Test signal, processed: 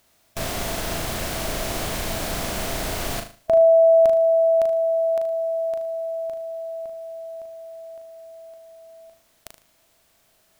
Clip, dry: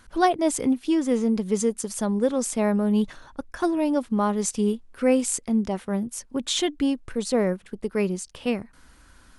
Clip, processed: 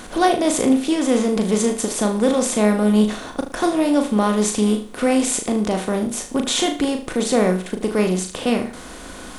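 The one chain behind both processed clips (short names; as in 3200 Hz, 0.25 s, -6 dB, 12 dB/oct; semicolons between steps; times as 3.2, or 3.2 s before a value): per-bin compression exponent 0.6; bit-crush 11-bit; flutter echo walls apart 6.5 m, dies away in 0.38 s; gain +1.5 dB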